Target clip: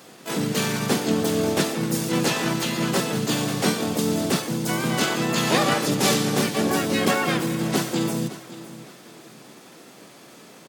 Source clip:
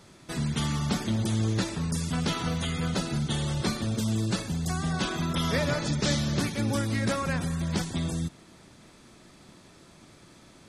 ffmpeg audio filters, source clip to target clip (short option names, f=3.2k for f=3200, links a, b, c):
-filter_complex "[0:a]highpass=f=170:w=0.5412,highpass=f=170:w=1.3066,asplit=4[a][b][c][d];[b]asetrate=35002,aresample=44100,atempo=1.25992,volume=-4dB[e];[c]asetrate=58866,aresample=44100,atempo=0.749154,volume=-1dB[f];[d]asetrate=88200,aresample=44100,atempo=0.5,volume=-1dB[g];[a][e][f][g]amix=inputs=4:normalize=0,asplit=2[h][i];[i]aecho=0:1:563|1126|1689:0.158|0.0507|0.0162[j];[h][j]amix=inputs=2:normalize=0,volume=3dB"